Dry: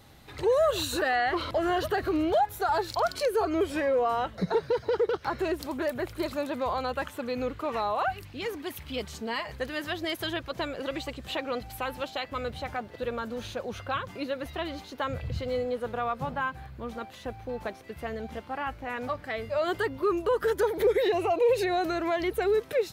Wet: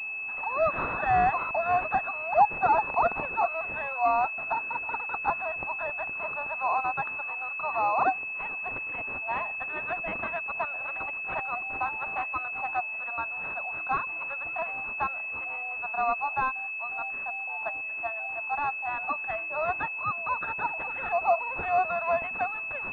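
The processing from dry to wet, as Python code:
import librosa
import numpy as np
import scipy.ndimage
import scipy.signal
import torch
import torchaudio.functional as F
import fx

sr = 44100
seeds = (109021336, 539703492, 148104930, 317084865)

y = scipy.signal.sosfilt(scipy.signal.butter(12, 680.0, 'highpass', fs=sr, output='sos'), x)
y = fx.pwm(y, sr, carrier_hz=2600.0)
y = F.gain(torch.from_numpy(y), 6.5).numpy()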